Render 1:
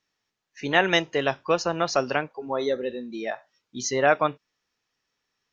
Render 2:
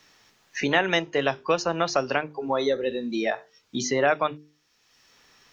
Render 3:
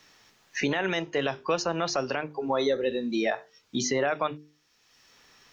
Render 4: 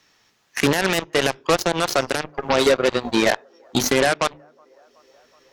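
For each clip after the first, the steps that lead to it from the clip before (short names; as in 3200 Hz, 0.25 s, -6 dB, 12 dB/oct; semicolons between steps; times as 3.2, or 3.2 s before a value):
notches 50/100/150/200/250/300/350/400/450 Hz; three-band squash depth 70%
limiter -15.5 dBFS, peak gain reduction 10 dB
band-limited delay 0.373 s, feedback 76%, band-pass 770 Hz, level -23 dB; added harmonics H 5 -13 dB, 7 -9 dB, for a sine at -15 dBFS; gain +7 dB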